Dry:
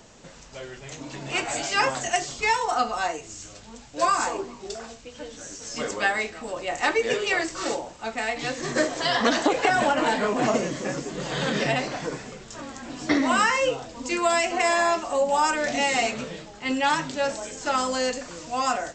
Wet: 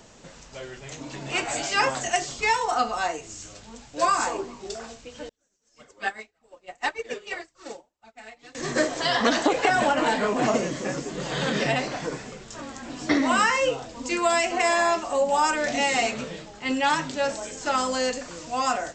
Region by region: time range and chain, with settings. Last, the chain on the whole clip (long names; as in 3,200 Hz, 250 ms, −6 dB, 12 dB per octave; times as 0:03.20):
0:05.29–0:08.55: flanger 1.8 Hz, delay 0.8 ms, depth 5.1 ms, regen +2% + expander for the loud parts 2.5 to 1, over −45 dBFS
whole clip: no processing